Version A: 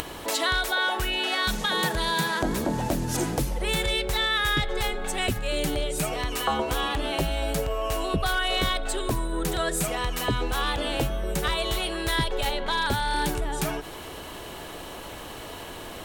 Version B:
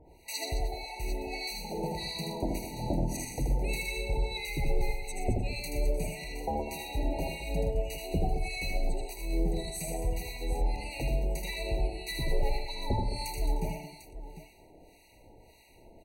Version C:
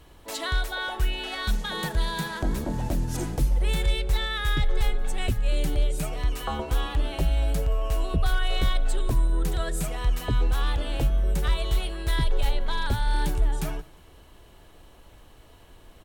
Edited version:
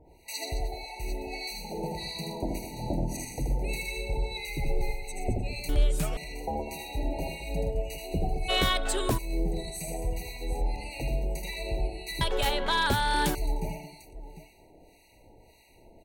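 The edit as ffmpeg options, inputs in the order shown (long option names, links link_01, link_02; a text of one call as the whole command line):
ffmpeg -i take0.wav -i take1.wav -i take2.wav -filter_complex "[0:a]asplit=2[link_01][link_02];[1:a]asplit=4[link_03][link_04][link_05][link_06];[link_03]atrim=end=5.692[link_07];[2:a]atrim=start=5.688:end=6.172[link_08];[link_04]atrim=start=6.168:end=8.5[link_09];[link_01]atrim=start=8.48:end=9.19[link_10];[link_05]atrim=start=9.17:end=12.212[link_11];[link_02]atrim=start=12.208:end=13.352[link_12];[link_06]atrim=start=13.348[link_13];[link_07][link_08]acrossfade=duration=0.004:curve1=hsin:curve2=hsin[link_14];[link_14][link_09]acrossfade=duration=0.004:curve1=hsin:curve2=hsin[link_15];[link_15][link_10]acrossfade=duration=0.02:curve1=tri:curve2=tri[link_16];[link_16][link_11]acrossfade=duration=0.02:curve1=tri:curve2=tri[link_17];[link_17][link_12]acrossfade=duration=0.004:curve1=hsin:curve2=hsin[link_18];[link_18][link_13]acrossfade=duration=0.004:curve1=hsin:curve2=hsin" out.wav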